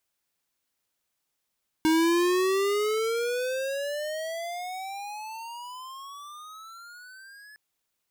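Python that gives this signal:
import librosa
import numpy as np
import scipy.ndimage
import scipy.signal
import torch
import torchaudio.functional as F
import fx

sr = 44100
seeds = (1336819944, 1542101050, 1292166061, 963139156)

y = fx.riser_tone(sr, length_s=5.71, level_db=-21, wave='square', hz=314.0, rise_st=29.5, swell_db=-28.0)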